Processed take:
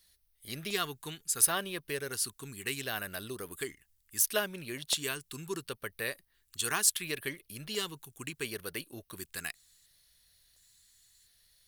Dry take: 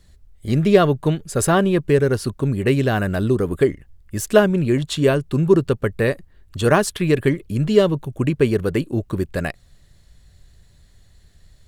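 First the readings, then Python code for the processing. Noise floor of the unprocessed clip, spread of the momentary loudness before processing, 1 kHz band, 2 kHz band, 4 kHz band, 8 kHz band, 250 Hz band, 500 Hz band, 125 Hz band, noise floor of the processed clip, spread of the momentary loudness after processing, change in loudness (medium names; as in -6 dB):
-52 dBFS, 9 LU, -15.5 dB, -10.0 dB, -4.5 dB, +1.0 dB, -25.0 dB, -22.5 dB, -27.0 dB, -73 dBFS, 16 LU, -14.5 dB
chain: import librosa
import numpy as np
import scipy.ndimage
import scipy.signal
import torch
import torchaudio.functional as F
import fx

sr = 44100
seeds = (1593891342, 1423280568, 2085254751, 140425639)

y = F.preemphasis(torch.from_numpy(x), 0.97).numpy()
y = fx.filter_lfo_notch(y, sr, shape='square', hz=0.71, low_hz=580.0, high_hz=7400.0, q=2.0)
y = y * librosa.db_to_amplitude(2.0)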